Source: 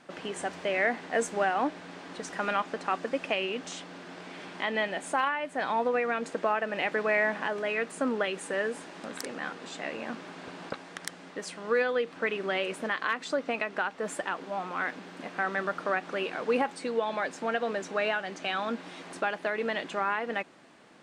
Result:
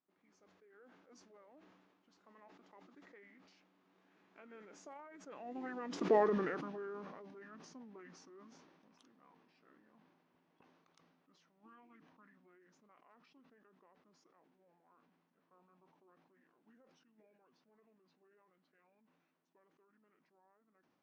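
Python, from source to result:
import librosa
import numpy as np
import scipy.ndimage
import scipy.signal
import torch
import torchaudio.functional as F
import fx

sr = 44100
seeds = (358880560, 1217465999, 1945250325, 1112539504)

y = fx.doppler_pass(x, sr, speed_mps=18, closest_m=1.5, pass_at_s=6.15)
y = fx.formant_shift(y, sr, semitones=-6)
y = fx.dynamic_eq(y, sr, hz=1300.0, q=0.79, threshold_db=-58.0, ratio=4.0, max_db=-3)
y = fx.sustainer(y, sr, db_per_s=35.0)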